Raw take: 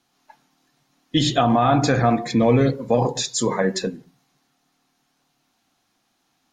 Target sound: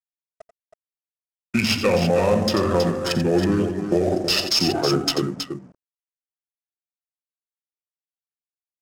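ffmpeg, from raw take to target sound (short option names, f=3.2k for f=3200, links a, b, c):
-filter_complex "[0:a]highpass=f=41:p=1,lowshelf=f=330:g=4,bandreject=f=1.2k:w=8.3,aeval=exprs='sgn(val(0))*max(abs(val(0))-0.00473,0)':c=same,acrossover=split=160|4800[a][b][c];[a]acompressor=threshold=-29dB:ratio=4[d];[b]acompressor=threshold=-23dB:ratio=4[e];[c]acompressor=threshold=-42dB:ratio=4[f];[d][e][f]amix=inputs=3:normalize=0,bass=f=250:g=-13,treble=f=4k:g=2,acrusher=bits=7:mix=0:aa=0.5,aexciter=amount=11.4:drive=6.4:freq=7.4k,adynamicsmooth=sensitivity=4.5:basefreq=1.6k,aecho=1:1:65|68|238:0.266|0.1|0.355,asetrate=32667,aresample=44100,alimiter=level_in=15.5dB:limit=-1dB:release=50:level=0:latency=1,volume=-8dB"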